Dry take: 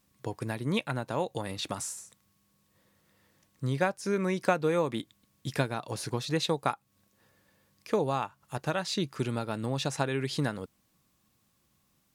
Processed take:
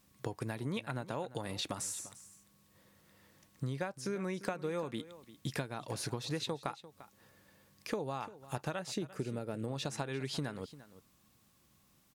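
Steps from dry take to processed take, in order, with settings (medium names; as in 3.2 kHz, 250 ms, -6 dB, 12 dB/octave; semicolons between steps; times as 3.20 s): 8.79–9.68 s: graphic EQ 500/1000/4000 Hz +6/-9/-9 dB; compression 6:1, threshold -37 dBFS, peak gain reduction 16.5 dB; delay 346 ms -16.5 dB; trim +2.5 dB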